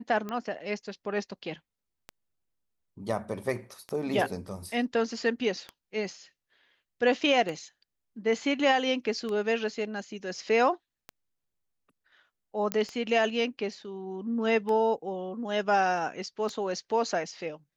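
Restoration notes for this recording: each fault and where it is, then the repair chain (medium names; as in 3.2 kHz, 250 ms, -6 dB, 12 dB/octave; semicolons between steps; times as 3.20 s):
tick 33 1/3 rpm -22 dBFS
12.72 s: pop -12 dBFS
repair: de-click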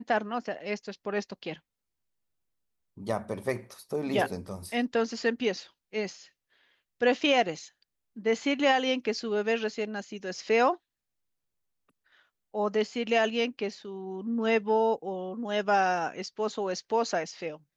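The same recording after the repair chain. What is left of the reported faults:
nothing left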